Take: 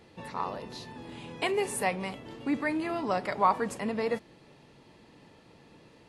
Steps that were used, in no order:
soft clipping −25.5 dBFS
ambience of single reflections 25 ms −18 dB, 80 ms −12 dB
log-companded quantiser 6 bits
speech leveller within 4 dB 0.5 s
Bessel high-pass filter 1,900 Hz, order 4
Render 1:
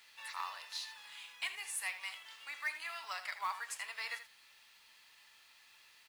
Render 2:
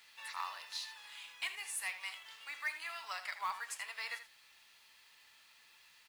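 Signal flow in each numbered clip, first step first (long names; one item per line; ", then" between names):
Bessel high-pass filter, then speech leveller, then soft clipping, then ambience of single reflections, then log-companded quantiser
Bessel high-pass filter, then soft clipping, then speech leveller, then log-companded quantiser, then ambience of single reflections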